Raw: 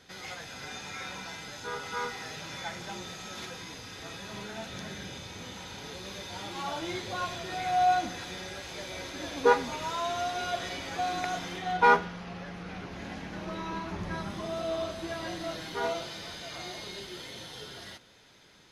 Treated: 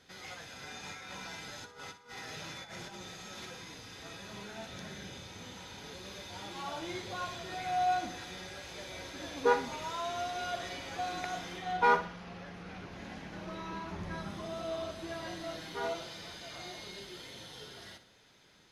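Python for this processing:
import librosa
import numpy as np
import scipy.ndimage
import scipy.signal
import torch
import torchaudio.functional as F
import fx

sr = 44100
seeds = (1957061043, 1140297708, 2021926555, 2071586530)

p1 = fx.over_compress(x, sr, threshold_db=-41.0, ratio=-0.5, at=(0.83, 3.01))
p2 = p1 + fx.echo_feedback(p1, sr, ms=60, feedback_pct=33, wet_db=-12, dry=0)
y = F.gain(torch.from_numpy(p2), -5.0).numpy()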